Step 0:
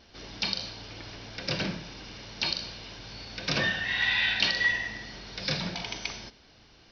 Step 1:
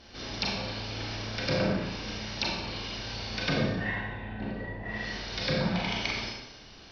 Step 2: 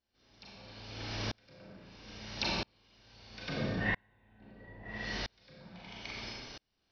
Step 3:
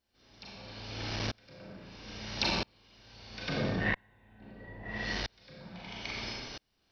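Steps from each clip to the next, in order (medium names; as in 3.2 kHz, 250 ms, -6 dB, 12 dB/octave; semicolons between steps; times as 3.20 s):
low-pass that closes with the level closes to 440 Hz, closed at -24 dBFS; Schroeder reverb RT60 0.95 s, combs from 29 ms, DRR -2 dB; trim +2.5 dB
sawtooth tremolo in dB swelling 0.76 Hz, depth 38 dB; trim +2 dB
transformer saturation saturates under 500 Hz; trim +4.5 dB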